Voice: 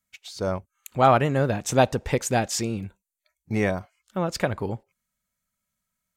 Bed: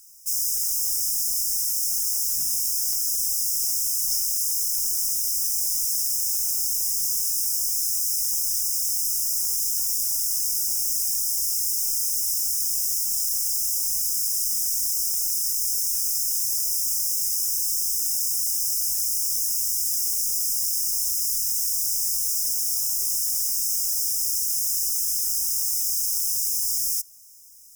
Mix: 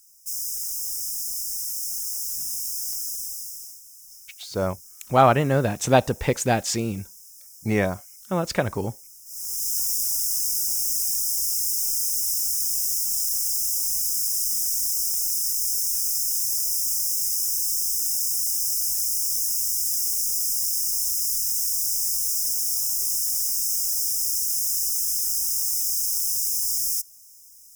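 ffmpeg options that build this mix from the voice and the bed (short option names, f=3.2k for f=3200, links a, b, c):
-filter_complex "[0:a]adelay=4150,volume=1.5dB[a];[1:a]volume=17.5dB,afade=t=out:st=2.99:d=0.82:silence=0.133352,afade=t=in:st=9.25:d=0.51:silence=0.0749894[b];[a][b]amix=inputs=2:normalize=0"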